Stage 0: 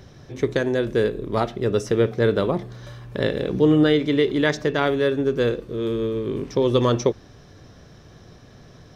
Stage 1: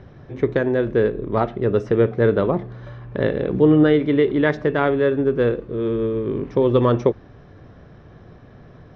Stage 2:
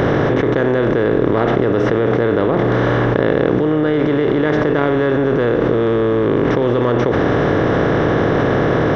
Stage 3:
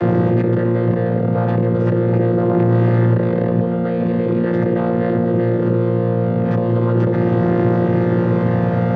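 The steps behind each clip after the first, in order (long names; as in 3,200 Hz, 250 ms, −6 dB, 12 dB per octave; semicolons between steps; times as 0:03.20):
low-pass filter 2,000 Hz 12 dB per octave; level +2.5 dB
compressor on every frequency bin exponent 0.4; envelope flattener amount 100%; level −6.5 dB
channel vocoder with a chord as carrier bare fifth, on A#2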